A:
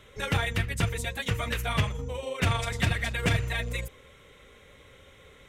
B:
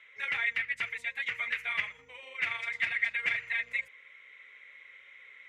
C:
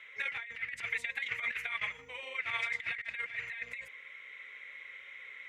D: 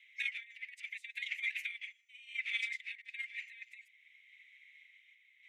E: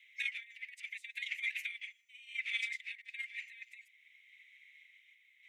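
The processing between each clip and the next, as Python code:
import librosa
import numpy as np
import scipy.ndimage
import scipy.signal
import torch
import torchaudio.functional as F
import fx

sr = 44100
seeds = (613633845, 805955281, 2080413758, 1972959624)

y1 = fx.rider(x, sr, range_db=10, speed_s=2.0)
y1 = fx.bandpass_q(y1, sr, hz=2100.0, q=6.3)
y1 = y1 * 10.0 ** (7.5 / 20.0)
y2 = fx.over_compress(y1, sr, threshold_db=-36.0, ratio=-0.5)
y3 = scipy.signal.sosfilt(scipy.signal.butter(6, 2200.0, 'highpass', fs=sr, output='sos'), y2)
y3 = fx.tremolo_random(y3, sr, seeds[0], hz=3.5, depth_pct=55)
y3 = fx.upward_expand(y3, sr, threshold_db=-59.0, expansion=1.5)
y3 = y3 * 10.0 ** (4.0 / 20.0)
y4 = fx.high_shelf(y3, sr, hz=5200.0, db=5.0)
y4 = y4 * 10.0 ** (-1.0 / 20.0)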